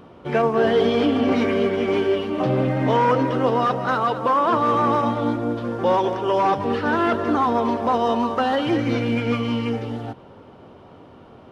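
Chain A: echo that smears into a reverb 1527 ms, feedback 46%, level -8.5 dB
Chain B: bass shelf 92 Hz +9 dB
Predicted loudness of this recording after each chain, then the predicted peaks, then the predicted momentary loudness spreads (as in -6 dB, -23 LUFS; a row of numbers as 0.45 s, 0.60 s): -20.5 LUFS, -20.0 LUFS; -6.5 dBFS, -7.5 dBFS; 10 LU, 5 LU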